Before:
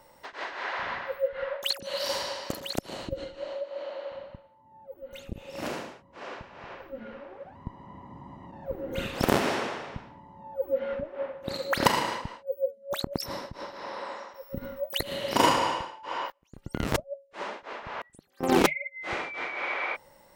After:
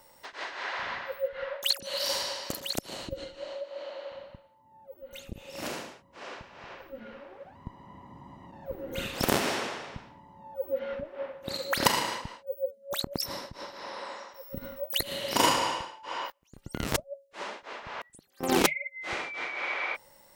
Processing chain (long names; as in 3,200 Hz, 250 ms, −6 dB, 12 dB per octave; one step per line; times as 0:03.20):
high-shelf EQ 3,000 Hz +9 dB
level −3.5 dB